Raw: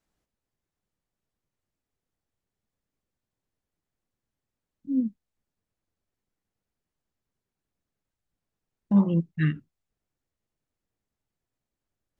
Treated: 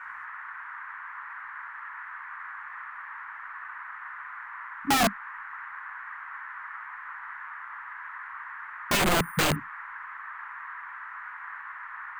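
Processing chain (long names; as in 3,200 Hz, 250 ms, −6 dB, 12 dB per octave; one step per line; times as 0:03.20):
noise in a band 960–1,900 Hz −48 dBFS
wrap-around overflow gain 25 dB
0:08.97–0:09.56: bad sample-rate conversion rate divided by 4×, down filtered, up hold
level +7.5 dB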